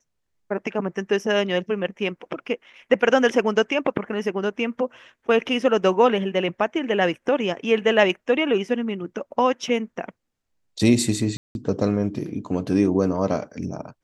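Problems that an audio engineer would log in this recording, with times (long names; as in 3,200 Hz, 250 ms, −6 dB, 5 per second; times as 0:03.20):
0:11.37–0:11.55: drop-out 181 ms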